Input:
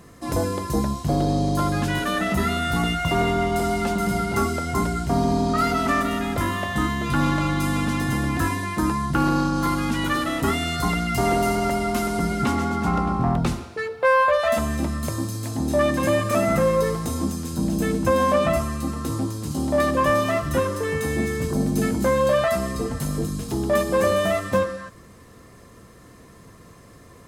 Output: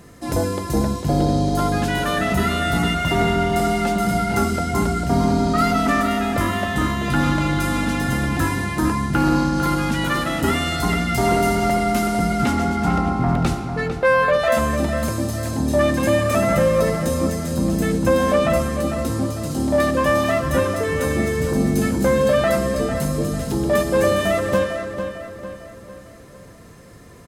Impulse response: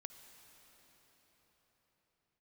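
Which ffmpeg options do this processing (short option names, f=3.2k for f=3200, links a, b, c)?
-filter_complex "[0:a]bandreject=f=1.1k:w=8.4,asplit=2[a][b];[b]adelay=450,lowpass=f=4k:p=1,volume=-8dB,asplit=2[c][d];[d]adelay=450,lowpass=f=4k:p=1,volume=0.47,asplit=2[e][f];[f]adelay=450,lowpass=f=4k:p=1,volume=0.47,asplit=2[g][h];[h]adelay=450,lowpass=f=4k:p=1,volume=0.47,asplit=2[i][j];[j]adelay=450,lowpass=f=4k:p=1,volume=0.47[k];[c][e][g][i][k]amix=inputs=5:normalize=0[l];[a][l]amix=inputs=2:normalize=0,volume=2.5dB"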